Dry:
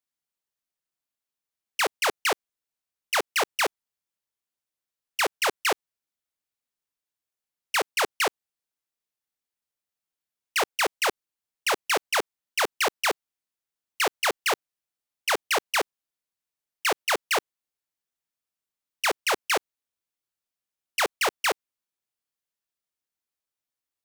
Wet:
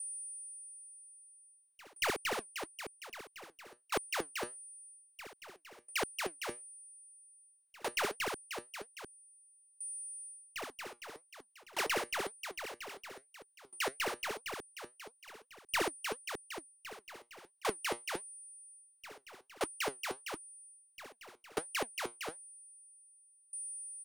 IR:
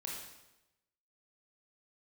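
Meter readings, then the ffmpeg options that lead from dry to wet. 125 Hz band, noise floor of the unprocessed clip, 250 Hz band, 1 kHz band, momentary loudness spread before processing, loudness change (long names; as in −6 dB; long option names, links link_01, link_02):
can't be measured, below −85 dBFS, −6.0 dB, −12.5 dB, 6 LU, −13.5 dB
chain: -filter_complex "[0:a]flanger=delay=0.4:depth=8.1:regen=72:speed=0.96:shape=sinusoidal,acrossover=split=300[link_01][link_02];[link_02]acompressor=threshold=-33dB:ratio=2[link_03];[link_01][link_03]amix=inputs=2:normalize=0,aecho=1:1:63|767:0.355|0.501,asoftclip=type=hard:threshold=-27.5dB,aeval=exprs='val(0)+0.00178*sin(2*PI*9300*n/s)':channel_layout=same,areverse,acompressor=threshold=-47dB:ratio=5,areverse,aeval=exprs='val(0)*pow(10,-27*if(lt(mod(0.51*n/s,1),2*abs(0.51)/1000),1-mod(0.51*n/s,1)/(2*abs(0.51)/1000),(mod(0.51*n/s,1)-2*abs(0.51)/1000)/(1-2*abs(0.51)/1000))/20)':channel_layout=same,volume=16.5dB"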